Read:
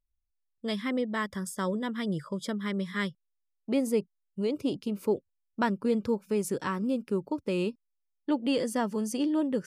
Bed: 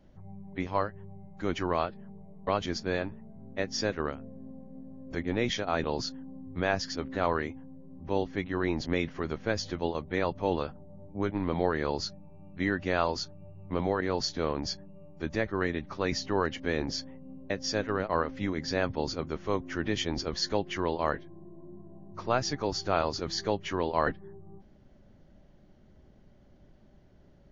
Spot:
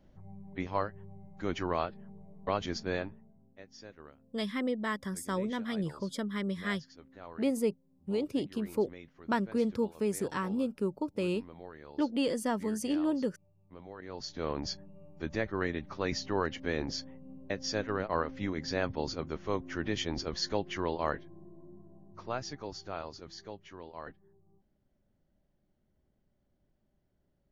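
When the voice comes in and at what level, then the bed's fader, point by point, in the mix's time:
3.70 s, -2.5 dB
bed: 2.99 s -3 dB
3.56 s -20 dB
13.86 s -20 dB
14.52 s -3 dB
21.4 s -3 dB
23.81 s -17.5 dB

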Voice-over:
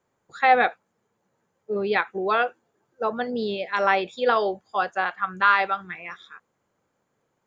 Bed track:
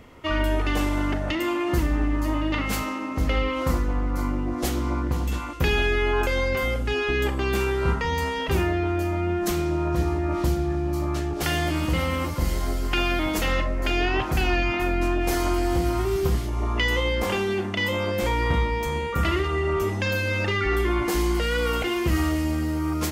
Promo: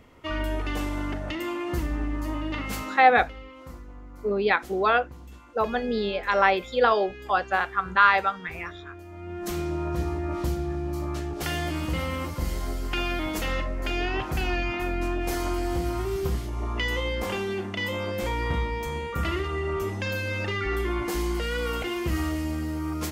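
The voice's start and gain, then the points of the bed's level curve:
2.55 s, +0.5 dB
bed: 2.94 s -5.5 dB
3.34 s -19 dB
9.05 s -19 dB
9.56 s -4.5 dB

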